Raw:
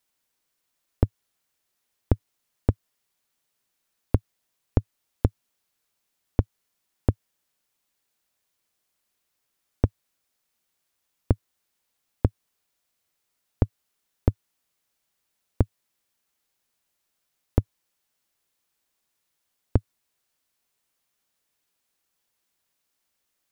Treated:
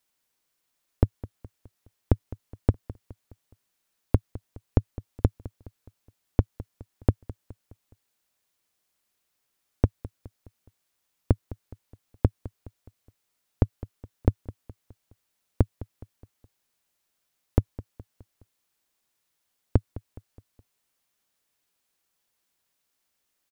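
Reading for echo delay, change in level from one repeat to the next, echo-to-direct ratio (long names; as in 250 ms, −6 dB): 209 ms, −6.5 dB, −16.5 dB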